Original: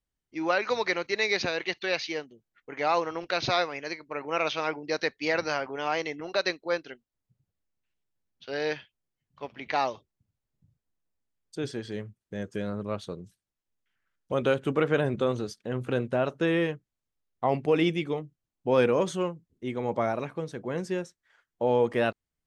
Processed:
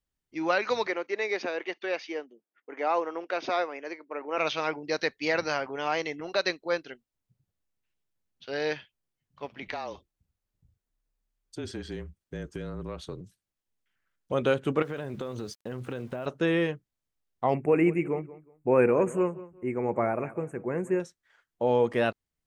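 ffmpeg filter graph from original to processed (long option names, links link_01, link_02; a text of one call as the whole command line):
ffmpeg -i in.wav -filter_complex "[0:a]asettb=1/sr,asplit=3[link_01][link_02][link_03];[link_01]atrim=end=0.874[link_04];[link_02]atrim=start=0.87:end=4.38,asetpts=PTS-STARTPTS,afade=type=in:duration=0.004:curve=qsin,afade=type=out:start_time=3.506:duration=0.004:curve=qsin,highpass=frequency=260:width=0.5412,highpass=frequency=260:width=1.3066,highshelf=frequency=2300:gain=-11,bandreject=frequency=4100:width=6.7[link_05];[link_03]atrim=start=4.376[link_06];[link_04][link_05]acrossfade=duration=0.004:curve1=hsin:curve2=qsin[link_07];[link_07][link_06]acrossfade=duration=0.004:curve1=qsin:curve2=hsin,asettb=1/sr,asplit=3[link_08][link_09][link_10];[link_08]atrim=end=9.624[link_11];[link_09]atrim=start=9.62:end=13.21,asetpts=PTS-STARTPTS,afade=type=in:duration=0.004:curve=qsin,afade=type=out:start_time=3.586:duration=0.004:curve=qsin,acompressor=threshold=-30dB:ratio=12:attack=3.2:release=140:knee=1:detection=peak,afreqshift=-33[link_12];[link_10]atrim=start=13.206[link_13];[link_11][link_12]acrossfade=duration=0.004:curve1=hsin:curve2=qsin[link_14];[link_14][link_13]acrossfade=duration=0.004:curve1=qsin:curve2=hsin,asettb=1/sr,asplit=3[link_15][link_16][link_17];[link_15]atrim=end=14.824[link_18];[link_16]atrim=start=14.82:end=16.26,asetpts=PTS-STARTPTS,afade=type=in:duration=0.004:curve=qsin,afade=type=out:start_time=1.436:duration=0.004:curve=qsin,acompressor=threshold=-30dB:ratio=10:attack=3.2:release=140:knee=1:detection=peak,aeval=exprs='val(0)*gte(abs(val(0)),0.00211)':channel_layout=same[link_19];[link_17]atrim=start=16.256[link_20];[link_18][link_19]acrossfade=duration=0.004:curve1=hsin:curve2=qsin[link_21];[link_21][link_20]acrossfade=duration=0.004:curve1=qsin:curve2=hsin,asettb=1/sr,asplit=3[link_22][link_23][link_24];[link_22]atrim=end=17.544[link_25];[link_23]atrim=start=17.54:end=21,asetpts=PTS-STARTPTS,afade=type=in:duration=0.004:curve=qsin,afade=type=out:start_time=3.456:duration=0.004:curve=qsin,asuperstop=centerf=4300:order=12:qfactor=0.99,equalizer=frequency=370:width_type=o:width=0.24:gain=5,asplit=2[link_26][link_27];[link_27]adelay=184,lowpass=frequency=2700:poles=1,volume=-17dB,asplit=2[link_28][link_29];[link_29]adelay=184,lowpass=frequency=2700:poles=1,volume=0.25[link_30];[link_26][link_28][link_30]amix=inputs=3:normalize=0,atrim=end_sample=152586[link_31];[link_24]atrim=start=20.996[link_32];[link_25][link_31]acrossfade=duration=0.004:curve1=hsin:curve2=qsin[link_33];[link_33][link_32]acrossfade=duration=0.004:curve1=qsin:curve2=hsin" out.wav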